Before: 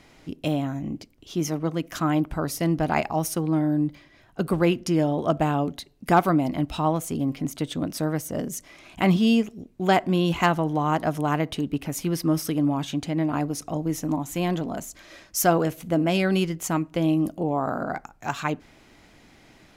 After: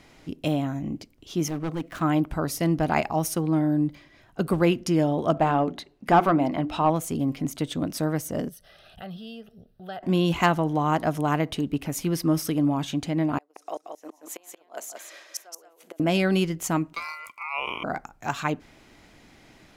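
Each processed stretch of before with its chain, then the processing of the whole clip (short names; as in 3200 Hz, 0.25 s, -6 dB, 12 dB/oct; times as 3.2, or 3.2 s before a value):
1.48–2.02 median filter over 9 samples + hard clip -24.5 dBFS
5.34–6.9 notches 60/120/180/240/300/360/420/480 Hz + overdrive pedal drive 13 dB, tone 1300 Hz, clips at -7 dBFS
8.49–10.03 compressor 2:1, threshold -42 dBFS + fixed phaser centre 1500 Hz, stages 8
13.38–16 flipped gate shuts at -18 dBFS, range -30 dB + HPF 420 Hz 24 dB/oct + echo 0.179 s -6 dB
16.93–17.84 HPF 490 Hz 24 dB/oct + ring modulator 1700 Hz
whole clip: dry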